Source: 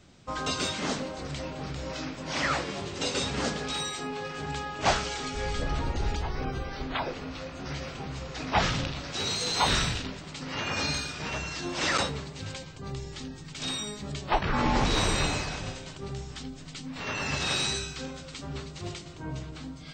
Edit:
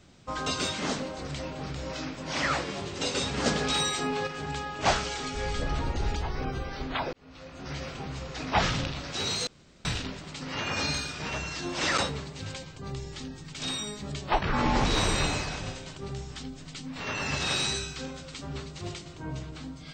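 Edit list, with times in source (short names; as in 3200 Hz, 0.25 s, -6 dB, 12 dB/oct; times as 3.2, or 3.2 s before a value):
3.46–4.27 gain +5 dB
7.13–7.81 fade in
9.47–9.85 room tone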